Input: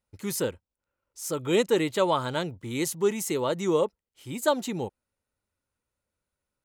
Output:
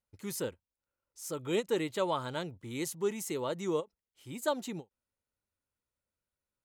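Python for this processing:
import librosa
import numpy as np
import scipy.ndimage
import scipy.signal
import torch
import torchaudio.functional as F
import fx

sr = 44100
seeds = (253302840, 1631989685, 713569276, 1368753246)

y = fx.end_taper(x, sr, db_per_s=460.0)
y = y * librosa.db_to_amplitude(-7.5)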